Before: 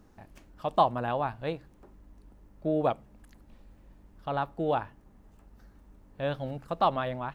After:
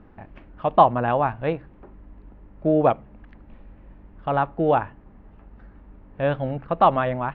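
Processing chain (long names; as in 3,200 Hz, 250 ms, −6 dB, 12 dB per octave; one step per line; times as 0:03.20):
low-pass filter 2,700 Hz 24 dB per octave
level +8.5 dB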